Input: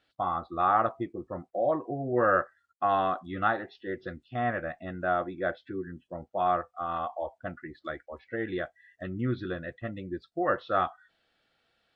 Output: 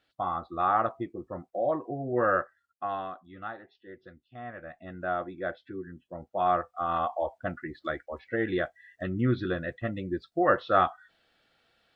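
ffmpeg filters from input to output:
-af "volume=5.62,afade=t=out:st=2.27:d=0.91:silence=0.281838,afade=t=in:st=4.52:d=0.51:silence=0.354813,afade=t=in:st=6.02:d=0.99:silence=0.446684"

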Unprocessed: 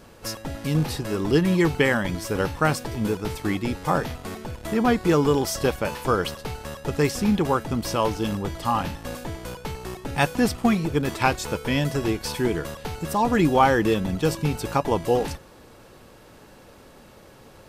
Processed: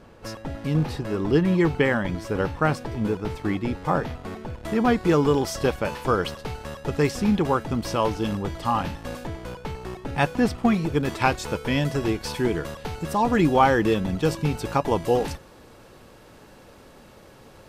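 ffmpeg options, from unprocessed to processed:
-af "asetnsamples=n=441:p=0,asendcmd='4.65 lowpass f 5000;9.27 lowpass f 2900;10.74 lowpass f 6100;14.84 lowpass f 11000',lowpass=f=2200:p=1"

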